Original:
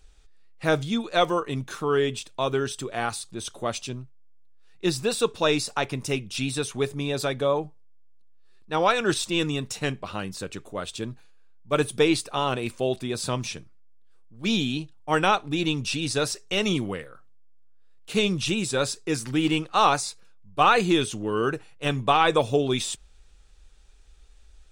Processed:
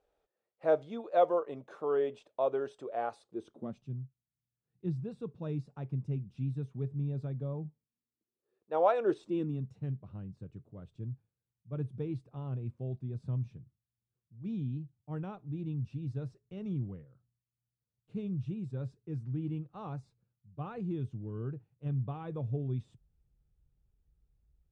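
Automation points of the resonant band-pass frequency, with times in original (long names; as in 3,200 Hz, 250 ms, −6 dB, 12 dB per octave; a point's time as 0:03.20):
resonant band-pass, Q 2.8
0:03.20 580 Hz
0:03.84 140 Hz
0:07.53 140 Hz
0:08.90 670 Hz
0:09.74 120 Hz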